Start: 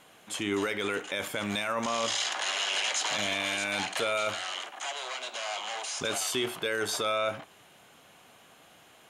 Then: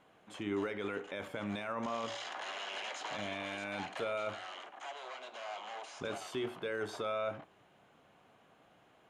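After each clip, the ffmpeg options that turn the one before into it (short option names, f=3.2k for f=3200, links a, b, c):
-af "lowpass=f=1.1k:p=1,bandreject=f=81.43:t=h:w=4,bandreject=f=162.86:t=h:w=4,bandreject=f=244.29:t=h:w=4,bandreject=f=325.72:t=h:w=4,bandreject=f=407.15:t=h:w=4,bandreject=f=488.58:t=h:w=4,bandreject=f=570.01:t=h:w=4,volume=-4.5dB"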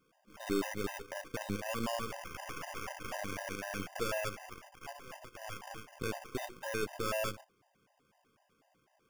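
-af "acrusher=samples=11:mix=1:aa=0.000001,aeval=exprs='0.0531*(cos(1*acos(clip(val(0)/0.0531,-1,1)))-cos(1*PI/2))+0.00944*(cos(4*acos(clip(val(0)/0.0531,-1,1)))-cos(4*PI/2))+0.0133*(cos(6*acos(clip(val(0)/0.0531,-1,1)))-cos(6*PI/2))+0.00473*(cos(7*acos(clip(val(0)/0.0531,-1,1)))-cos(7*PI/2))':c=same,afftfilt=real='re*gt(sin(2*PI*4*pts/sr)*(1-2*mod(floor(b*sr/1024/520),2)),0)':imag='im*gt(sin(2*PI*4*pts/sr)*(1-2*mod(floor(b*sr/1024/520),2)),0)':win_size=1024:overlap=0.75,volume=3.5dB"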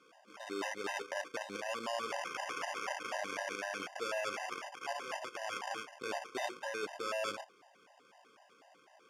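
-af "areverse,acompressor=threshold=-45dB:ratio=5,areverse,highpass=390,lowpass=7.1k,volume=11dB"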